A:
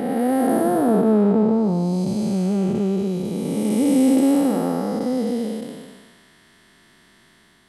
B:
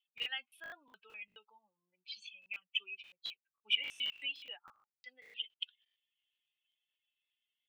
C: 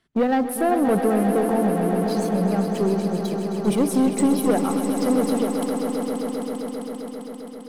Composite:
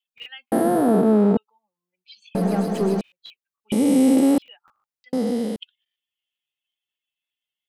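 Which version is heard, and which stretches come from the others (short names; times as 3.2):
B
0.52–1.37 from A
2.35–3.01 from C
3.72–4.38 from A
5.13–5.56 from A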